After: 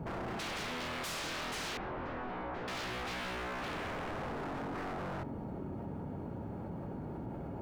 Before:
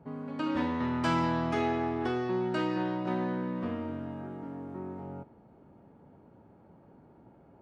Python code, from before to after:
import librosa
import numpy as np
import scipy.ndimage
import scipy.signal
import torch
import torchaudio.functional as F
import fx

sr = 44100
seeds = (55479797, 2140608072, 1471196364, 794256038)

p1 = fx.low_shelf(x, sr, hz=150.0, db=8.0)
p2 = fx.rider(p1, sr, range_db=4, speed_s=0.5)
p3 = p1 + (p2 * 10.0 ** (-1.0 / 20.0))
p4 = 10.0 ** (-18.5 / 20.0) * np.tanh(p3 / 10.0 ** (-18.5 / 20.0))
p5 = p4 + fx.echo_single(p4, sr, ms=813, db=-21.0, dry=0)
p6 = 10.0 ** (-33.5 / 20.0) * (np.abs((p5 / 10.0 ** (-33.5 / 20.0) + 3.0) % 4.0 - 2.0) - 1.0)
p7 = fx.lowpass(p6, sr, hz=1100.0, slope=12, at=(1.77, 2.68))
p8 = fx.env_flatten(p7, sr, amount_pct=70)
y = p8 * 10.0 ** (-1.5 / 20.0)